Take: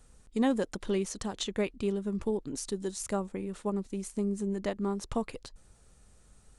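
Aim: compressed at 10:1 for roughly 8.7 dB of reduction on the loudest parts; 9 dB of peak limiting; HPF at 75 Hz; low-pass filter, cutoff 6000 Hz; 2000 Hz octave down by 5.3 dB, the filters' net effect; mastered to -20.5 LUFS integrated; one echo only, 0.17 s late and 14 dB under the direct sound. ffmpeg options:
-af "highpass=75,lowpass=6k,equalizer=f=2k:t=o:g=-6.5,acompressor=threshold=-31dB:ratio=10,alimiter=level_in=8dB:limit=-24dB:level=0:latency=1,volume=-8dB,aecho=1:1:170:0.2,volume=21dB"

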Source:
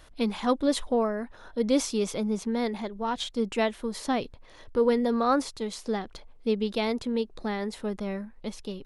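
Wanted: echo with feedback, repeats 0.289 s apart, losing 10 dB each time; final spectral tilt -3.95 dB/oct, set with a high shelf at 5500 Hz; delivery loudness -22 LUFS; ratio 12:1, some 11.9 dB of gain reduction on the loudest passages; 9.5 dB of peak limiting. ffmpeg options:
-af "highshelf=f=5.5k:g=4.5,acompressor=threshold=-30dB:ratio=12,alimiter=level_in=7dB:limit=-24dB:level=0:latency=1,volume=-7dB,aecho=1:1:289|578|867|1156:0.316|0.101|0.0324|0.0104,volume=18dB"

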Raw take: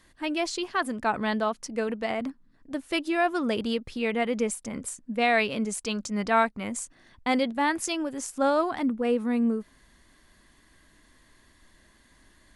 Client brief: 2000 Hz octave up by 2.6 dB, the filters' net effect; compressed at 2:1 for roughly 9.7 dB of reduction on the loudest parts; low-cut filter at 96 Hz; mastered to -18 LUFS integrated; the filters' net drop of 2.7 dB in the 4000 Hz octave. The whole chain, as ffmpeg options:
-af "highpass=96,equalizer=f=2k:t=o:g=4.5,equalizer=f=4k:t=o:g=-6,acompressor=threshold=-35dB:ratio=2,volume=16.5dB"

